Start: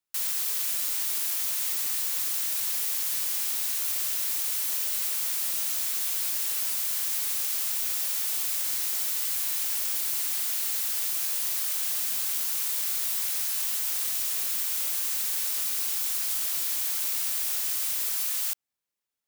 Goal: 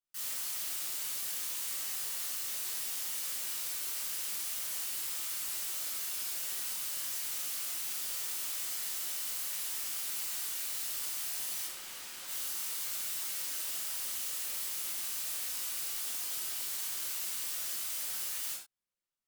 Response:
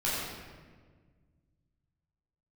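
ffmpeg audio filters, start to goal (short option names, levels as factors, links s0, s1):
-filter_complex "[0:a]asettb=1/sr,asplit=3[s0][s1][s2];[s0]atrim=end=11.654[s3];[s1]atrim=start=11.65:end=12.28,asetpts=PTS-STARTPTS,afade=t=in:d=0.004:c=qsin,afade=t=out:st=0.626:d=0.004:c=qsin,highshelf=f=5700:g=-10.5[s4];[s2]atrim=start=12.276[s5];[s3][s4]acrossfade=d=0.004:c1=hsin:c2=qsin[s6];[s6][s5]acrossfade=d=0.004:c1=qsin:c2=hsin[s7];[1:a]atrim=start_sample=2205,afade=t=out:st=0.31:d=0.01,atrim=end_sample=14112,asetrate=88200,aresample=44100[s8];[s7][s8]afir=irnorm=-1:irlink=0,volume=0.376"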